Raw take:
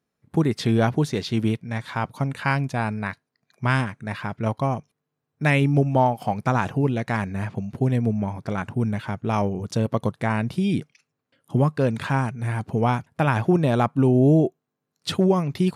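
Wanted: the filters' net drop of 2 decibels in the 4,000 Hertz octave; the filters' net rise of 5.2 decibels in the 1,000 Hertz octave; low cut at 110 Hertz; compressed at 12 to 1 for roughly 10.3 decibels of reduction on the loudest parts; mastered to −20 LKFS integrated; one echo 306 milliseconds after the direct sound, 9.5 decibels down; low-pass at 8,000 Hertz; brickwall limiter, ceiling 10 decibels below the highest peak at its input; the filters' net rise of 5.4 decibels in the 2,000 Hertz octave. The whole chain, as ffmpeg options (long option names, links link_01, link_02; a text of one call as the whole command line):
ffmpeg -i in.wav -af "highpass=110,lowpass=8000,equalizer=frequency=1000:width_type=o:gain=5.5,equalizer=frequency=2000:width_type=o:gain=6,equalizer=frequency=4000:width_type=o:gain=-5,acompressor=threshold=-22dB:ratio=12,alimiter=limit=-17dB:level=0:latency=1,aecho=1:1:306:0.335,volume=10dB" out.wav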